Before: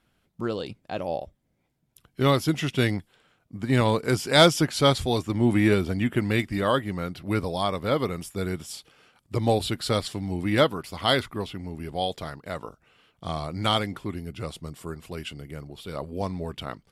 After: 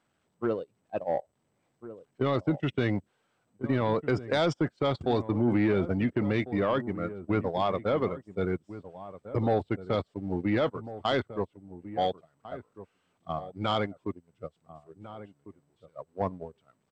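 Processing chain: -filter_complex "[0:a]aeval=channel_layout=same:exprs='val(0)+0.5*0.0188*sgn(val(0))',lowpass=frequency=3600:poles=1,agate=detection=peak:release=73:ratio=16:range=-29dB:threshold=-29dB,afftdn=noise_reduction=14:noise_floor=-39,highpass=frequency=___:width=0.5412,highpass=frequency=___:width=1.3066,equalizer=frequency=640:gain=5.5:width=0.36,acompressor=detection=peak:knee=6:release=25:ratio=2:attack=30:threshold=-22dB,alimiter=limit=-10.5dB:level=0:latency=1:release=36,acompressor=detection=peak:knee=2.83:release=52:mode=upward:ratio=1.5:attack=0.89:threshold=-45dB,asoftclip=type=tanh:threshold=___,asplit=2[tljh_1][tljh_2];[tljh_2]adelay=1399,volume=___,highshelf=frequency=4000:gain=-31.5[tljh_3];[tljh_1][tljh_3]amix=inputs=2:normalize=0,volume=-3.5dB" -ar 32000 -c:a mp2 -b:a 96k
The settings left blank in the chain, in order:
74, 74, -13dB, -14dB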